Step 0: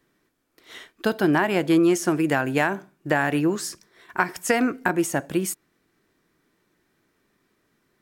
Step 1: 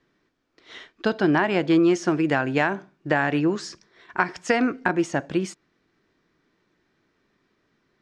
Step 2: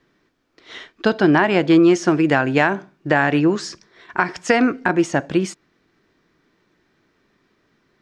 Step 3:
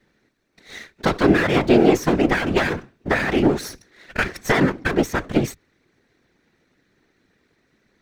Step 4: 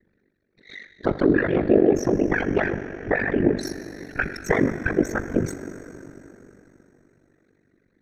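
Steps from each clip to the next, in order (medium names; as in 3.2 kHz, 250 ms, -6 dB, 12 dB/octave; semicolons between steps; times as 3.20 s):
low-pass 5.8 kHz 24 dB/octave
loudness maximiser +6.5 dB; trim -1 dB
comb filter that takes the minimum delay 0.51 ms; whisper effect
resonances exaggerated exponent 2; plate-style reverb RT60 3.7 s, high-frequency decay 0.9×, DRR 9.5 dB; ring modulator 24 Hz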